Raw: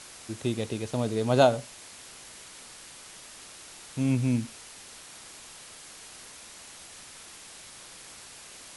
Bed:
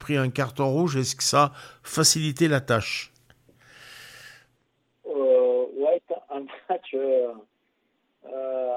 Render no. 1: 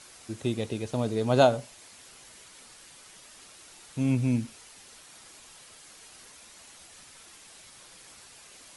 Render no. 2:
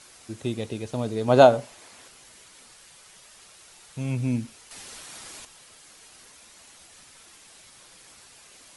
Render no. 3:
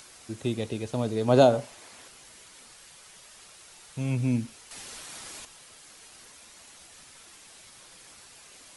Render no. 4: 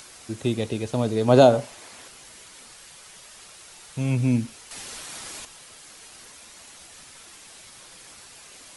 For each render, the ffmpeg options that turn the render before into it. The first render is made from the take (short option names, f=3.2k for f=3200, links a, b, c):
-af "afftdn=nr=6:nf=-48"
-filter_complex "[0:a]asettb=1/sr,asplit=3[a][b][c];[a]atrim=end=1.284[d];[b]atrim=start=1.28:end=2.08,asetpts=PTS-STARTPTS,afade=t=in:d=0.004:c=qsin,afade=t=out:st=0.796:d=0.004:c=qsin,equalizer=f=690:w=0.32:g=6.5[e];[c]atrim=start=2.076[f];[d][e]acrossfade=d=0.004:c1=hsin:c2=qsin[g];[g][f]acrossfade=d=0.004:c1=qsin:c2=hsin,asettb=1/sr,asplit=3[h][i][j];[h]atrim=end=2.714[k];[i]atrim=start=2.71:end=4.2,asetpts=PTS-STARTPTS,afade=t=in:d=0.004:c=qsin,afade=t=out:st=1.486:d=0.004:c=qsin,equalizer=f=280:w=3.3:g=-8.5[l];[j]atrim=start=4.196[m];[k][l]acrossfade=d=0.004:c1=hsin:c2=qsin[n];[n][m]acrossfade=d=0.004:c1=qsin:c2=hsin,asplit=3[o][p][q];[o]atrim=end=4.712[r];[p]atrim=start=4.708:end=5.452,asetpts=PTS-STARTPTS,volume=8.5dB[s];[q]atrim=start=5.448[t];[r][s]acrossfade=d=0.004:c1=hsin:c2=hsin[u];[u][t]acrossfade=d=0.004:c1=hsin:c2=hsin"
-filter_complex "[0:a]acrossover=split=530|3300[a][b][c];[b]alimiter=limit=-18dB:level=0:latency=1:release=83[d];[a][d][c]amix=inputs=3:normalize=0,acompressor=mode=upward:threshold=-50dB:ratio=2.5"
-af "volume=4.5dB,alimiter=limit=-3dB:level=0:latency=1"